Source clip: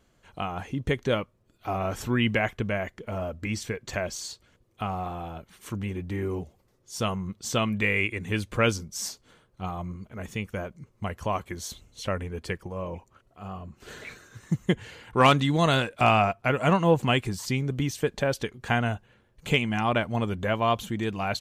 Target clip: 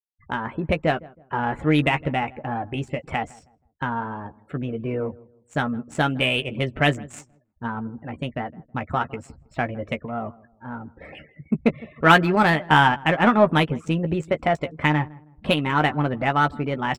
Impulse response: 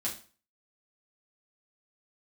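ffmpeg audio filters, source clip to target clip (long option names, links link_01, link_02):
-filter_complex "[0:a]afftfilt=real='re*gte(hypot(re,im),0.00794)':imag='im*gte(hypot(re,im),0.00794)':win_size=1024:overlap=0.75,equalizer=frequency=6100:width_type=o:width=0.45:gain=12,adynamicsmooth=sensitivity=1.5:basefreq=1500,asetrate=55566,aresample=44100,highshelf=frequency=3200:width_type=q:width=1.5:gain=-8.5,asplit=2[link_01][link_02];[link_02]adelay=13,volume=-8.5dB[link_03];[link_01][link_03]amix=inputs=2:normalize=0,asplit=2[link_04][link_05];[link_05]adelay=160,lowpass=frequency=920:poles=1,volume=-20.5dB,asplit=2[link_06][link_07];[link_07]adelay=160,lowpass=frequency=920:poles=1,volume=0.35,asplit=2[link_08][link_09];[link_09]adelay=160,lowpass=frequency=920:poles=1,volume=0.35[link_10];[link_04][link_06][link_08][link_10]amix=inputs=4:normalize=0,volume=4dB"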